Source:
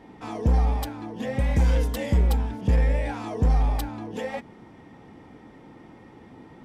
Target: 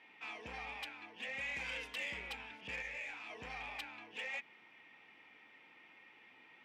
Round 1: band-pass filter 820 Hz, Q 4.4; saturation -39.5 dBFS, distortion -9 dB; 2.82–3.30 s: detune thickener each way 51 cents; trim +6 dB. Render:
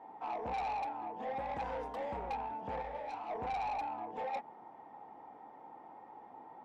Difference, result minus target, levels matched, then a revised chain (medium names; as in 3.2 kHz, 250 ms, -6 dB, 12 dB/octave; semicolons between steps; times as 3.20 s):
2 kHz band -12.5 dB
band-pass filter 2.5 kHz, Q 4.4; saturation -39.5 dBFS, distortion -18 dB; 2.82–3.30 s: detune thickener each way 51 cents; trim +6 dB